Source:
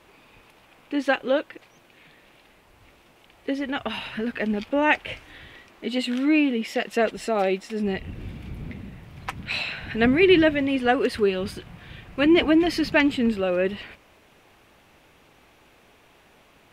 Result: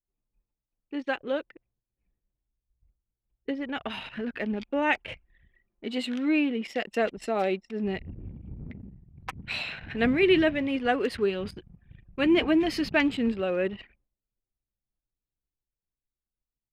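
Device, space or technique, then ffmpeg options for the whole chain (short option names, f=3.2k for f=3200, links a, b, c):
voice memo with heavy noise removal: -filter_complex "[0:a]agate=range=-12dB:threshold=-53dB:ratio=16:detection=peak,asettb=1/sr,asplit=3[a][b][c];[a]atrim=end=1.174[d];[b]atrim=start=1.17:end=3.51,asetpts=PTS-STARTPTS,afade=t=in:d=0.004:c=qsin,afade=t=out:st=2.336:d=0.004:c=qsin,equalizer=f=68:t=o:w=1.5:g=9[e];[c]atrim=start=3.506[f];[d][e]acrossfade=d=0.004:c1=hsin:c2=qsin[g];[g][f]acrossfade=d=0.004:c1=qsin:c2=hsin,anlmdn=2.51,dynaudnorm=f=240:g=17:m=5dB,volume=-8dB"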